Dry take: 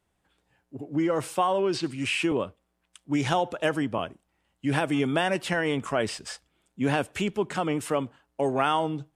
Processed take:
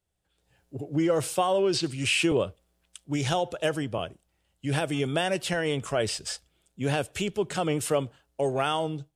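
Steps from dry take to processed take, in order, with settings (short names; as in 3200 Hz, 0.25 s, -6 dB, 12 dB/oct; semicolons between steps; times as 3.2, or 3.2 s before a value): AGC gain up to 14.5 dB; ten-band EQ 250 Hz -10 dB, 1000 Hz -9 dB, 2000 Hz -6 dB; gain -4.5 dB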